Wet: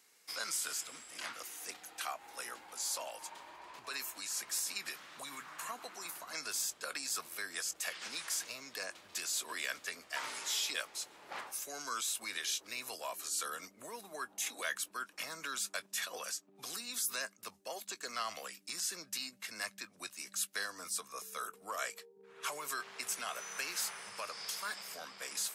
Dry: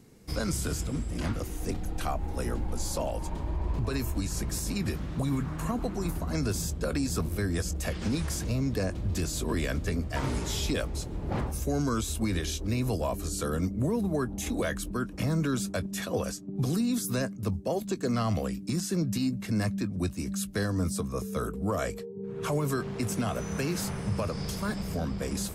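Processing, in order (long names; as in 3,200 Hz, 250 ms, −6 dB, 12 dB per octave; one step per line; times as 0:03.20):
high-pass filter 1,300 Hz 12 dB per octave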